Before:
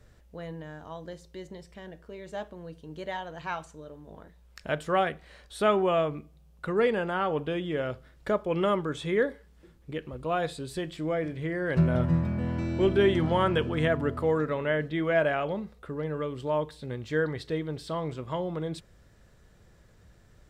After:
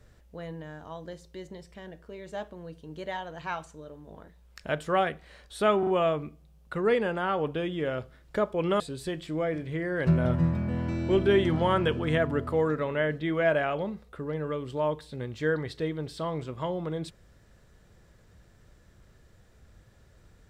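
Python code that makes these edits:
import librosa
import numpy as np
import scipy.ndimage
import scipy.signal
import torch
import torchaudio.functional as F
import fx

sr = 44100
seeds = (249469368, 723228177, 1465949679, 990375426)

y = fx.edit(x, sr, fx.stutter(start_s=5.79, slice_s=0.04, count=3),
    fx.cut(start_s=8.72, length_s=1.78), tone=tone)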